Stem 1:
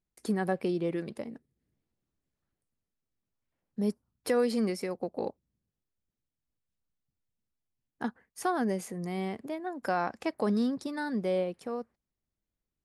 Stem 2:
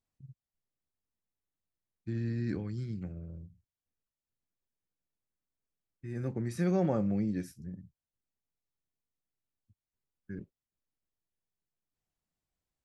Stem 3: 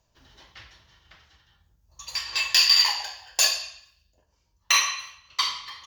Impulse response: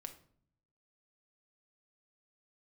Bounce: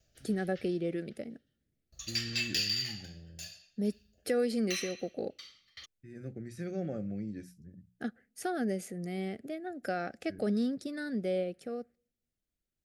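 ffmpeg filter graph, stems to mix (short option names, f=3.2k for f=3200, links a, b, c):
-filter_complex "[0:a]volume=-3dB,asplit=2[a][b];[b]volume=-17.5dB[c];[1:a]bandreject=f=60:t=h:w=6,bandreject=f=120:t=h:w=6,bandreject=f=180:t=h:w=6,volume=-7dB[d];[2:a]alimiter=limit=-10.5dB:level=0:latency=1:release=112,aeval=exprs='val(0)*pow(10,-29*if(lt(mod(0.52*n/s,1),2*abs(0.52)/1000),1-mod(0.52*n/s,1)/(2*abs(0.52)/1000),(mod(0.52*n/s,1)-2*abs(0.52)/1000)/(1-2*abs(0.52)/1000))/20)':c=same,volume=0dB[e];[3:a]atrim=start_sample=2205[f];[c][f]afir=irnorm=-1:irlink=0[g];[a][d][e][g]amix=inputs=4:normalize=0,asuperstop=centerf=980:order=4:qfactor=1.6"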